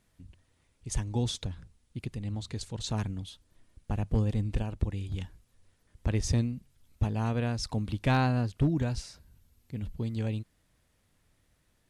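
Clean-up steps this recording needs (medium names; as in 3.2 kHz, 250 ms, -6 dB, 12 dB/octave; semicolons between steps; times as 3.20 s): clip repair -18.5 dBFS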